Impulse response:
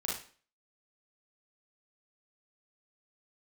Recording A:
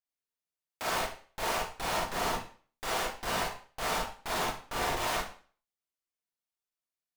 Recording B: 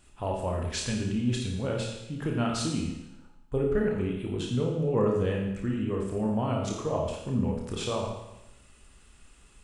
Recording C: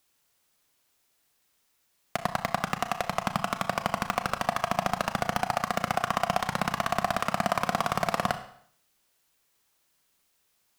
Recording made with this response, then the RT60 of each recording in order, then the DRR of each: A; 0.45, 0.95, 0.60 seconds; −4.5, −1.0, 8.5 decibels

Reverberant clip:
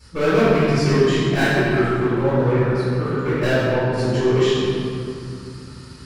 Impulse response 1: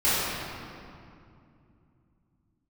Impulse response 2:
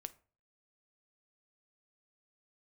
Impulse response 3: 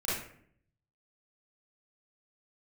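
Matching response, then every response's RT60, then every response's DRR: 1; 2.5, 0.40, 0.60 seconds; −14.0, 12.0, −9.5 decibels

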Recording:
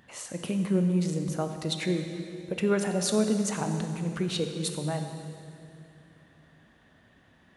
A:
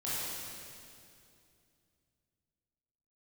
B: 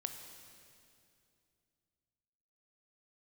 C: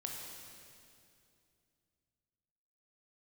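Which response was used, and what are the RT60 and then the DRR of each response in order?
B; 2.5, 2.5, 2.5 seconds; −10.5, 5.5, −0.5 decibels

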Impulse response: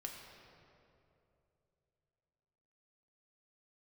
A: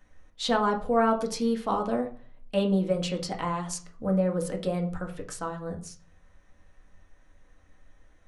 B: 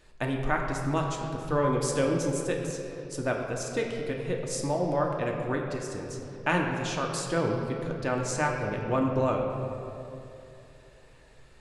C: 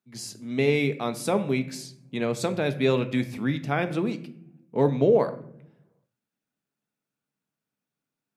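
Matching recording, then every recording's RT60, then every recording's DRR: B; 0.45, 2.9, 0.70 seconds; 1.0, 0.0, 8.5 decibels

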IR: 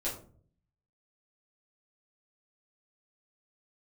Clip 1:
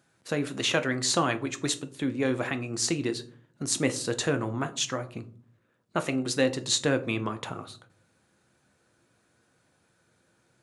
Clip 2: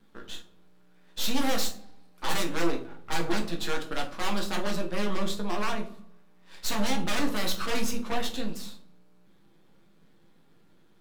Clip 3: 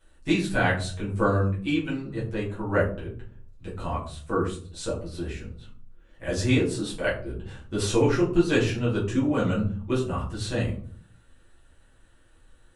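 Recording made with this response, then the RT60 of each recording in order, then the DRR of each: 3; non-exponential decay, 0.50 s, 0.50 s; 8.5, 1.5, −8.5 decibels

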